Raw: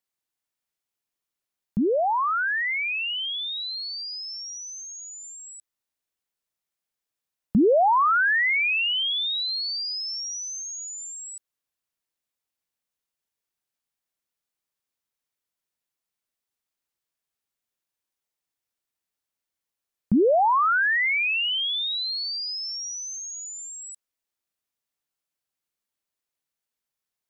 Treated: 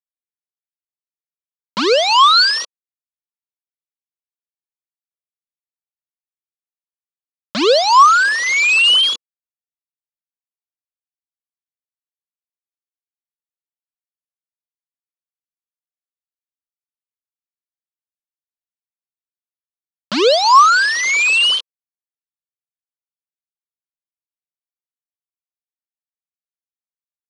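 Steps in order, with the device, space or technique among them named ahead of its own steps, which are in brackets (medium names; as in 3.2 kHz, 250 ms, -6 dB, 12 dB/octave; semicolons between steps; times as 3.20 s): hand-held game console (bit crusher 4-bit; cabinet simulation 430–5900 Hz, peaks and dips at 490 Hz +4 dB, 780 Hz -10 dB, 1.1 kHz +8 dB, 1.9 kHz -9 dB, 3 kHz +5 dB, 4.3 kHz +9 dB); trim +7.5 dB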